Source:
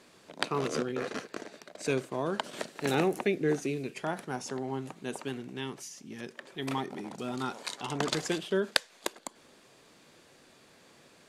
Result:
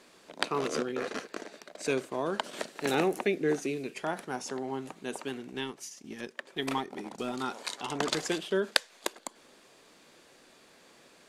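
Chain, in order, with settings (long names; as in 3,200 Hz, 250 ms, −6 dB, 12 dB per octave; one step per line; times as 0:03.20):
0:05.51–0:07.33: transient designer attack +5 dB, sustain −6 dB
parametric band 110 Hz −9 dB 1.3 octaves
level +1 dB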